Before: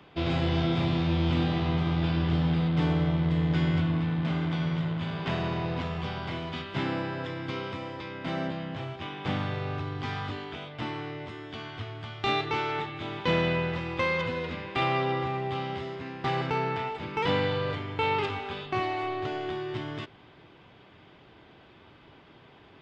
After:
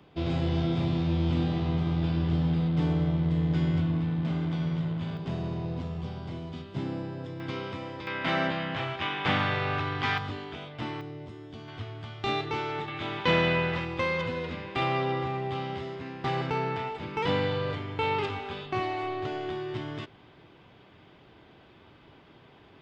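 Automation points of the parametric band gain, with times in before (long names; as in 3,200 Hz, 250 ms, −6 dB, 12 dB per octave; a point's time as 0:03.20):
parametric band 1,900 Hz 2.9 octaves
−7 dB
from 0:05.17 −14 dB
from 0:07.40 −2 dB
from 0:08.07 +10 dB
from 0:10.18 −2 dB
from 0:11.01 −12.5 dB
from 0:11.68 −4 dB
from 0:12.88 +4 dB
from 0:13.85 −2 dB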